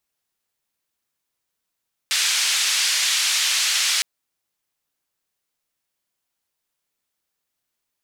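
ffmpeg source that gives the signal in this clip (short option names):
-f lavfi -i "anoisesrc=c=white:d=1.91:r=44100:seed=1,highpass=f=2100,lowpass=f=6100,volume=-8.5dB"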